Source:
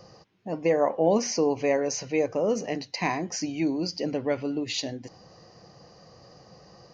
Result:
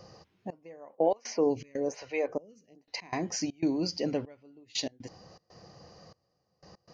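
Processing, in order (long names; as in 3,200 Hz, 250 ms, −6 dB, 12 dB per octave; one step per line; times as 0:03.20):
parametric band 81 Hz +7.5 dB 0.23 octaves
gate pattern "xxxx....x.xxx.x" 120 BPM −24 dB
0:00.95–0:02.95: phaser with staggered stages 1.1 Hz
level −1.5 dB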